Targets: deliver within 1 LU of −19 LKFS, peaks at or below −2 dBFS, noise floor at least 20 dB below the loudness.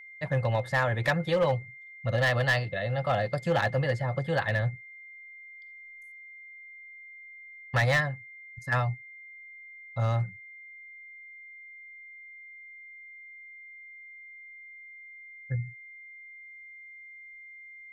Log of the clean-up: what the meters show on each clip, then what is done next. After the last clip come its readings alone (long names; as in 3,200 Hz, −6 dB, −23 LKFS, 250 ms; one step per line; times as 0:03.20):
share of clipped samples 0.4%; peaks flattened at −19.0 dBFS; interfering tone 2,100 Hz; level of the tone −45 dBFS; integrated loudness −28.5 LKFS; sample peak −19.0 dBFS; target loudness −19.0 LKFS
→ clipped peaks rebuilt −19 dBFS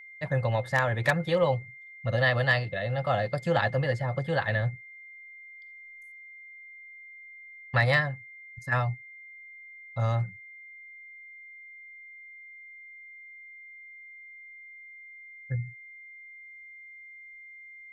share of clipped samples 0.0%; interfering tone 2,100 Hz; level of the tone −45 dBFS
→ notch filter 2,100 Hz, Q 30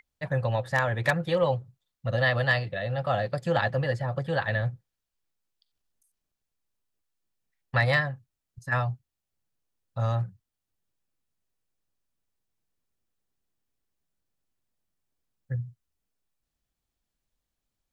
interfering tone none found; integrated loudness −28.0 LKFS; sample peak −10.0 dBFS; target loudness −19.0 LKFS
→ level +9 dB
brickwall limiter −2 dBFS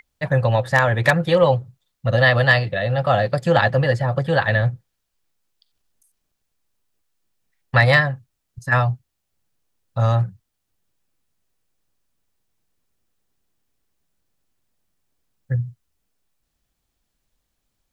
integrated loudness −19.0 LKFS; sample peak −2.0 dBFS; background noise floor −76 dBFS